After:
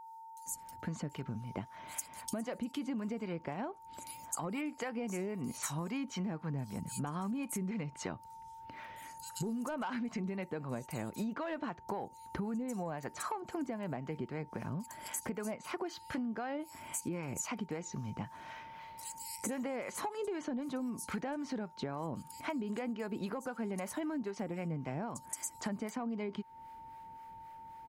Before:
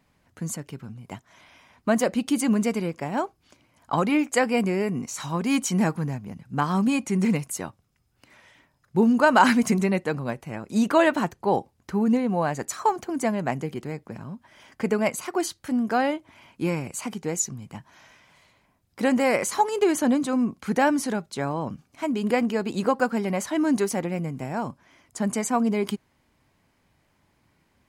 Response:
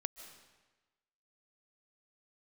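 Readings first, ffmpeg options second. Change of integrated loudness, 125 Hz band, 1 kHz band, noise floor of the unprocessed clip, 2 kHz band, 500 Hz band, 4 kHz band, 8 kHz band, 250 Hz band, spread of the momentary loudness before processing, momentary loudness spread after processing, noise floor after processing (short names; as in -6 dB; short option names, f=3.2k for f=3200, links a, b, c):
-15.0 dB, -10.5 dB, -15.5 dB, -68 dBFS, -16.5 dB, -15.5 dB, -13.5 dB, -9.5 dB, -14.5 dB, 14 LU, 9 LU, -54 dBFS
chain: -filter_complex "[0:a]highshelf=f=4.4k:g=-8.5,acrossover=split=5600[a][b];[a]adelay=460[c];[c][b]amix=inputs=2:normalize=0,acontrast=88,acrossover=split=640[d][e];[d]aeval=exprs='val(0)*(1-0.5/2+0.5/2*cos(2*PI*3.8*n/s))':c=same[f];[e]aeval=exprs='val(0)*(1-0.5/2-0.5/2*cos(2*PI*3.8*n/s))':c=same[g];[f][g]amix=inputs=2:normalize=0,alimiter=limit=-16.5dB:level=0:latency=1:release=324,highshelf=f=9.6k:g=11,aeval=exprs='val(0)+0.00501*sin(2*PI*900*n/s)':c=same,acompressor=threshold=-34dB:ratio=6,volume=-2dB"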